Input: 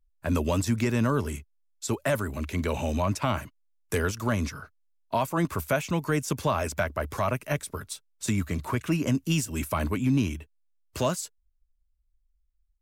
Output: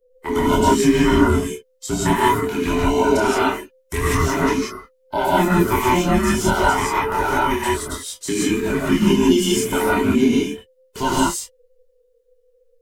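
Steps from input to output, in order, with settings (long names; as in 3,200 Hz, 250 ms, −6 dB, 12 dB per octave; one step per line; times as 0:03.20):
frequency inversion band by band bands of 500 Hz
multi-voice chorus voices 4, 0.69 Hz, delay 25 ms, depth 2.8 ms
reverb whose tail is shaped and stops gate 200 ms rising, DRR −5 dB
level +6.5 dB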